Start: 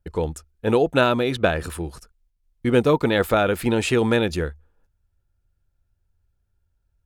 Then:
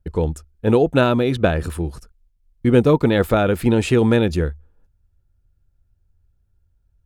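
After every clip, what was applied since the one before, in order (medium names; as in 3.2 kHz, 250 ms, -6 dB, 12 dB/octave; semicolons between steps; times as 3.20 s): bass shelf 420 Hz +9 dB; trim -1.5 dB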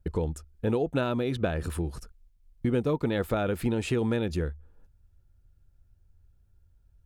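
compression 2.5:1, threshold -31 dBFS, peak gain reduction 15 dB; trim +1 dB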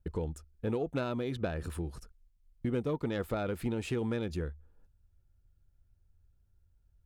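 self-modulated delay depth 0.057 ms; trim -6 dB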